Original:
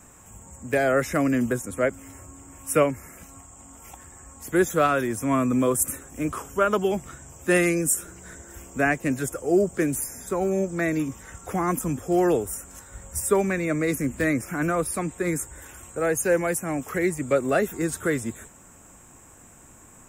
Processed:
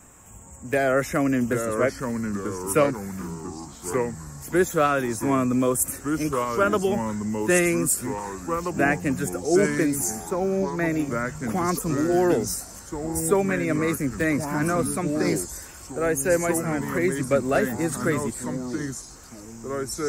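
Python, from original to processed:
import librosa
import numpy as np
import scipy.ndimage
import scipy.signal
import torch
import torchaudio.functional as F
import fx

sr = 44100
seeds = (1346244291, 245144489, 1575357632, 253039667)

y = fx.peak_eq(x, sr, hz=7900.0, db=-8.5, octaves=1.4, at=(10.3, 10.9))
y = fx.echo_pitch(y, sr, ms=656, semitones=-3, count=3, db_per_echo=-6.0)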